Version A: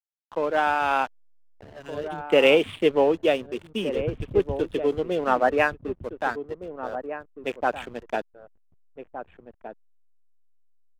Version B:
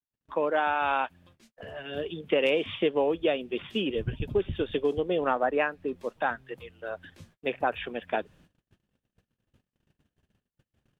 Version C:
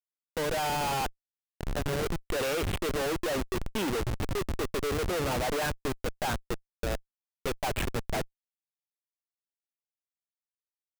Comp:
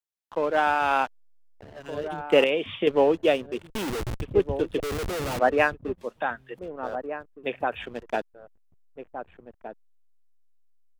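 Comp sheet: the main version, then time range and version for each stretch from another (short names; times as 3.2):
A
2.44–2.87 from B
3.7–4.21 from C
4.8–5.39 from C
5.98–6.59 from B
7.4–7.86 from B, crossfade 0.16 s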